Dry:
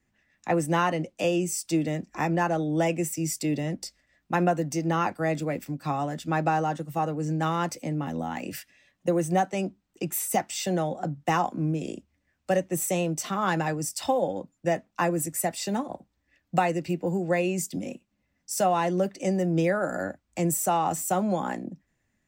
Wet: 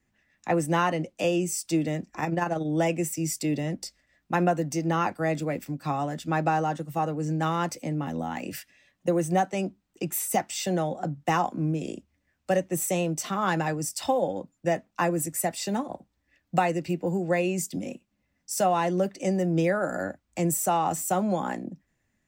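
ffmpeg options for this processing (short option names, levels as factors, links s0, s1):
-filter_complex "[0:a]asplit=3[s0][s1][s2];[s0]afade=t=out:st=2.1:d=0.02[s3];[s1]tremolo=f=21:d=0.519,afade=t=in:st=2.1:d=0.02,afade=t=out:st=2.64:d=0.02[s4];[s2]afade=t=in:st=2.64:d=0.02[s5];[s3][s4][s5]amix=inputs=3:normalize=0"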